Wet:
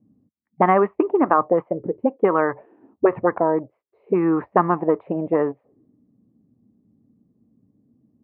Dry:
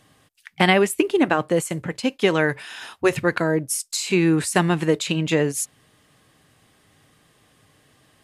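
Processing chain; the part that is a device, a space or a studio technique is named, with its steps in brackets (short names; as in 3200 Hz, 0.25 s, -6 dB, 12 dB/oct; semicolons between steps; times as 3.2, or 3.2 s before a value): low shelf 210 Hz -2.5 dB; envelope filter bass rig (envelope low-pass 220–1200 Hz up, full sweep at -16 dBFS; speaker cabinet 71–2100 Hz, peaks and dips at 87 Hz -7 dB, 150 Hz -9 dB, 1500 Hz -9 dB)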